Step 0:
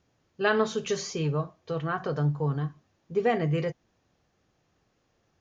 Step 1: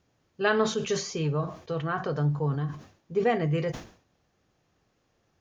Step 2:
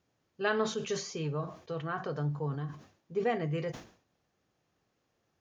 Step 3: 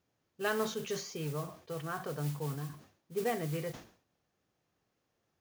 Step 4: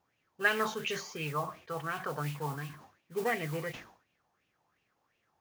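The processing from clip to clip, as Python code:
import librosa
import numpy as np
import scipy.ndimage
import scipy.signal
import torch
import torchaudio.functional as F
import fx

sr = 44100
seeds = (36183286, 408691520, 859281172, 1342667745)

y1 = fx.sustainer(x, sr, db_per_s=120.0)
y2 = fx.low_shelf(y1, sr, hz=63.0, db=-10.0)
y2 = y2 * librosa.db_to_amplitude(-5.5)
y3 = fx.mod_noise(y2, sr, seeds[0], snr_db=15)
y3 = y3 * librosa.db_to_amplitude(-3.0)
y4 = fx.bell_lfo(y3, sr, hz=2.8, low_hz=830.0, high_hz=2700.0, db=17)
y4 = y4 * librosa.db_to_amplitude(-1.5)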